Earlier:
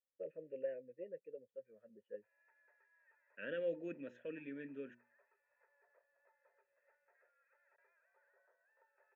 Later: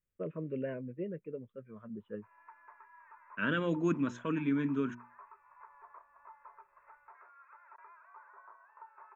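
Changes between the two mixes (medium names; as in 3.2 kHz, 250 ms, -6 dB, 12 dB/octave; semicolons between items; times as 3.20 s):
second voice: add bass shelf 130 Hz -8.5 dB; master: remove vowel filter e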